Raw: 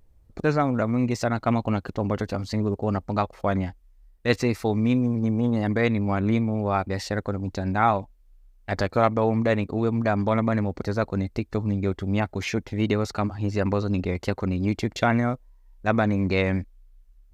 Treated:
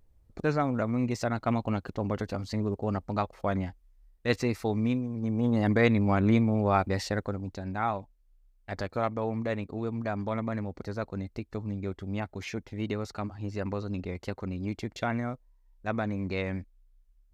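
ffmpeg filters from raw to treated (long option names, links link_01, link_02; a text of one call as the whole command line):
ffmpeg -i in.wav -af "volume=6dB,afade=type=out:start_time=4.86:duration=0.22:silence=0.473151,afade=type=in:start_time=5.08:duration=0.6:silence=0.281838,afade=type=out:start_time=6.87:duration=0.7:silence=0.375837" out.wav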